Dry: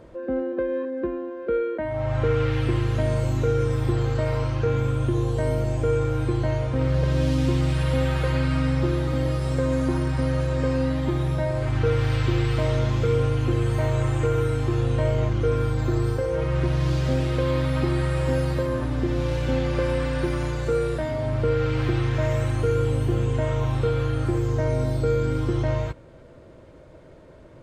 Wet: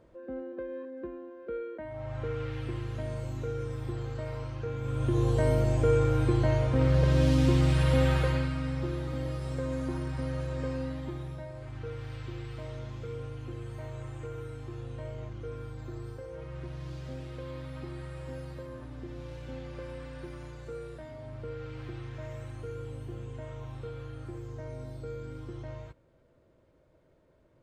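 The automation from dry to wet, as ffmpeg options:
ffmpeg -i in.wav -af "volume=-1.5dB,afade=type=in:start_time=4.8:duration=0.49:silence=0.281838,afade=type=out:start_time=8.12:duration=0.42:silence=0.375837,afade=type=out:start_time=10.65:duration=0.83:silence=0.421697" out.wav

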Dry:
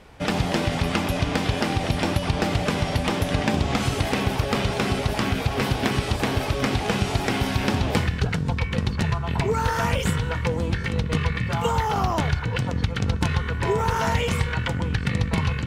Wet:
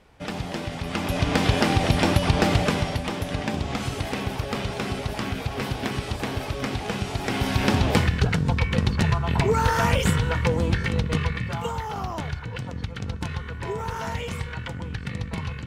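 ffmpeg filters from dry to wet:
ffmpeg -i in.wav -af "volume=10dB,afade=type=in:start_time=0.84:duration=0.61:silence=0.298538,afade=type=out:start_time=2.53:duration=0.49:silence=0.398107,afade=type=in:start_time=7.17:duration=0.53:silence=0.446684,afade=type=out:start_time=10.73:duration=1.04:silence=0.334965" out.wav

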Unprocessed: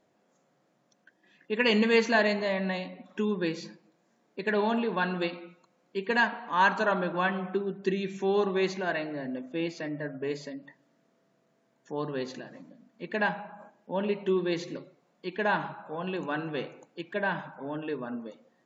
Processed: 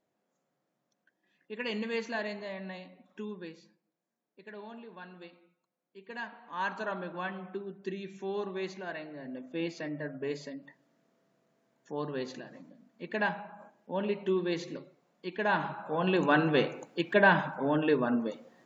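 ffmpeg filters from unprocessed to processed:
ffmpeg -i in.wav -af "volume=15.5dB,afade=type=out:start_time=3.25:duration=0.41:silence=0.398107,afade=type=in:start_time=5.98:duration=0.85:silence=0.316228,afade=type=in:start_time=9.16:duration=0.48:silence=0.473151,afade=type=in:start_time=15.45:duration=0.87:silence=0.316228" out.wav

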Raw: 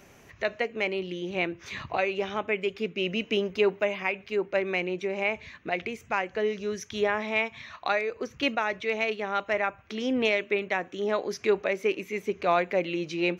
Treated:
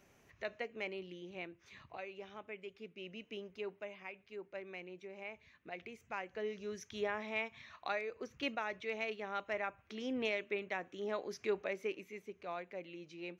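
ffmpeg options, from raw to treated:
ffmpeg -i in.wav -af "volume=-5dB,afade=type=out:start_time=0.86:duration=0.74:silence=0.473151,afade=type=in:start_time=5.44:duration=1.31:silence=0.398107,afade=type=out:start_time=11.73:duration=0.6:silence=0.398107" out.wav

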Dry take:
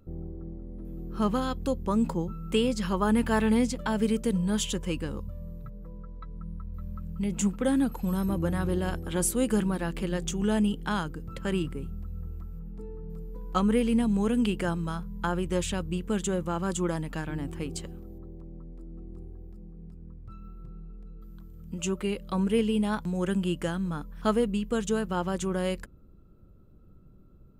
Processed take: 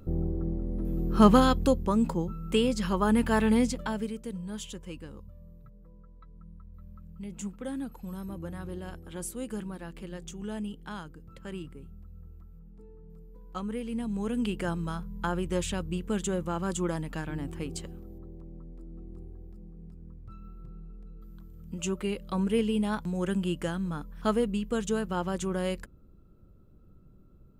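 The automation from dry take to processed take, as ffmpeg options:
ffmpeg -i in.wav -af "volume=17.5dB,afade=type=out:start_time=1.39:duration=0.55:silence=0.375837,afade=type=out:start_time=3.7:duration=0.42:silence=0.298538,afade=type=in:start_time=13.85:duration=0.96:silence=0.354813" out.wav

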